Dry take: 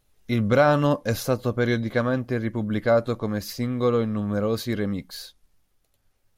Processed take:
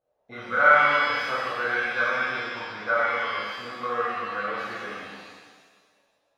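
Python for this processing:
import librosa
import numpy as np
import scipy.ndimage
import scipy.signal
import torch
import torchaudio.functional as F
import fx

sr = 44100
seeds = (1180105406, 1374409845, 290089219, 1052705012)

y = fx.auto_wah(x, sr, base_hz=610.0, top_hz=1400.0, q=4.7, full_db=-20.0, direction='up')
y = fx.rev_shimmer(y, sr, seeds[0], rt60_s=1.6, semitones=7, shimmer_db=-8, drr_db=-9.5)
y = y * librosa.db_to_amplitude(1.5)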